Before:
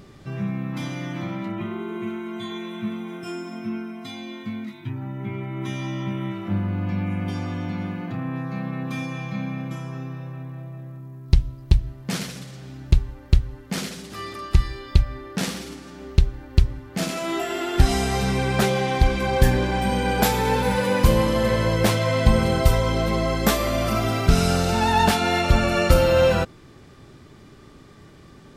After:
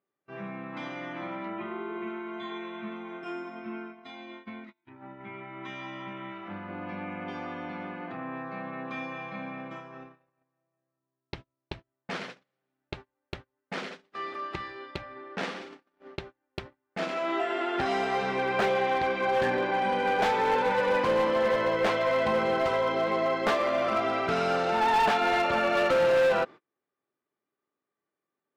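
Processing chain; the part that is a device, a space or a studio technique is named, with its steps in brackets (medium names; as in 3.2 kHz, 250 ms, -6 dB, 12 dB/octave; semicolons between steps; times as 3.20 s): walkie-talkie (band-pass 420–2300 Hz; hard clipper -20 dBFS, distortion -14 dB; gate -41 dBFS, range -34 dB); 5.15–6.69 s: dynamic bell 410 Hz, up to -6 dB, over -50 dBFS, Q 0.72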